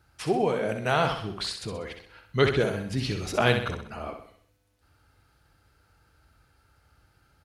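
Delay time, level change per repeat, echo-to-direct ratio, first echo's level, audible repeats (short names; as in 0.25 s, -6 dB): 64 ms, -6.5 dB, -6.0 dB, -7.0 dB, 5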